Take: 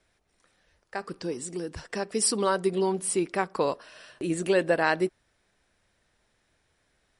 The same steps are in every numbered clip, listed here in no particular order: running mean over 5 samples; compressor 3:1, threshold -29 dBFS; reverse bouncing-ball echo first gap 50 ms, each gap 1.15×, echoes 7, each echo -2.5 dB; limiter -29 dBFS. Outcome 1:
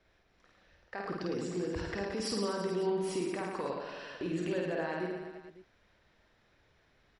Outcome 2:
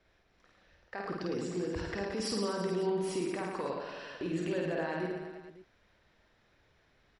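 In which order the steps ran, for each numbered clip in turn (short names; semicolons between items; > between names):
running mean > compressor > limiter > reverse bouncing-ball echo; running mean > limiter > compressor > reverse bouncing-ball echo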